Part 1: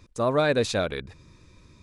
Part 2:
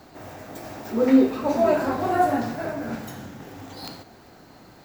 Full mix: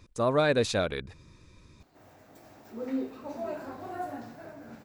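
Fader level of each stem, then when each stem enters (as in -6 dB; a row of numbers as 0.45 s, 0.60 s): -2.0 dB, -16.0 dB; 0.00 s, 1.80 s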